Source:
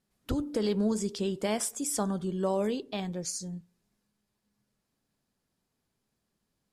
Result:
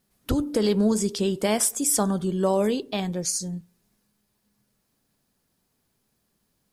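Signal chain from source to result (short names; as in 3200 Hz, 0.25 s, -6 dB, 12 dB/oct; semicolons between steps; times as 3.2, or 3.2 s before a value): high shelf 11000 Hz +11 dB; notch 7300 Hz, Q 28; gain +6.5 dB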